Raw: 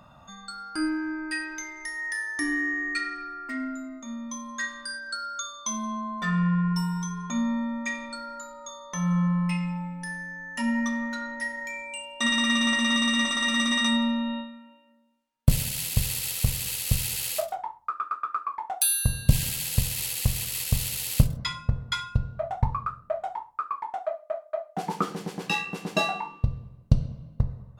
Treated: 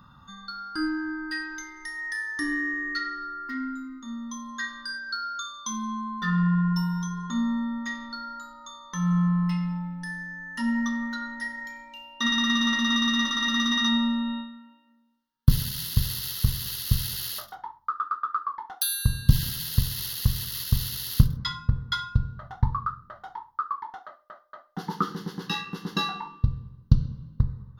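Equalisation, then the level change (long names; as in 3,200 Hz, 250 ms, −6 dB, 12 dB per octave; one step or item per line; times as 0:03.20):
phaser with its sweep stopped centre 2,400 Hz, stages 6
+2.0 dB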